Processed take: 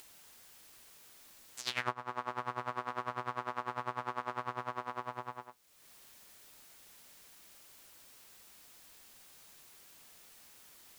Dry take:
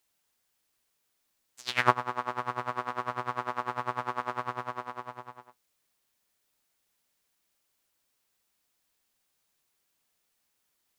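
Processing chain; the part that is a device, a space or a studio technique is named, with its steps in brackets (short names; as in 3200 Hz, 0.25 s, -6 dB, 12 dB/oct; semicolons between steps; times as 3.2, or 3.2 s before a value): upward and downward compression (upward compressor, threshold -48 dBFS; compressor 4:1, threshold -38 dBFS, peak gain reduction 19.5 dB); gain +4 dB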